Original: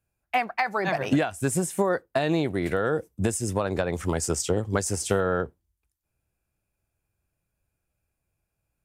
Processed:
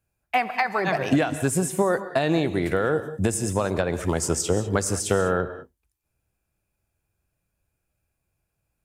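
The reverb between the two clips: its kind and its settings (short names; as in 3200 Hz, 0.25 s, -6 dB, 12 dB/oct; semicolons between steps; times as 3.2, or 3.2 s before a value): non-linear reverb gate 0.22 s rising, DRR 11.5 dB; gain +2 dB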